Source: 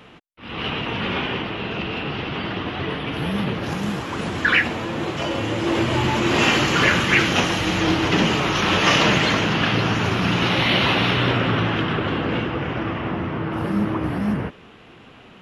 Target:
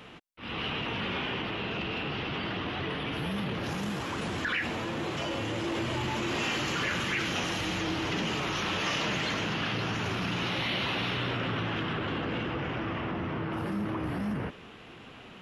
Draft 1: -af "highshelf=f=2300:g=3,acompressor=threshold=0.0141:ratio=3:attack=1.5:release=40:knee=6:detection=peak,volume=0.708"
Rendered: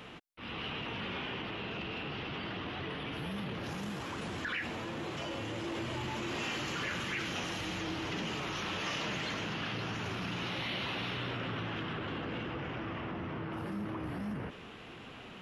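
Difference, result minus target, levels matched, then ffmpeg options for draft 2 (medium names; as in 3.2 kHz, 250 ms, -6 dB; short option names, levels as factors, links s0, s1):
compression: peak gain reduction +6 dB
-af "highshelf=f=2300:g=3,acompressor=threshold=0.0398:ratio=3:attack=1.5:release=40:knee=6:detection=peak,volume=0.708"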